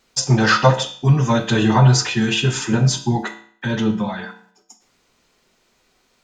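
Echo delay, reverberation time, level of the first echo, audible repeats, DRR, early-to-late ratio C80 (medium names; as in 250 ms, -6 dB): no echo, 0.55 s, no echo, no echo, 5.0 dB, 15.0 dB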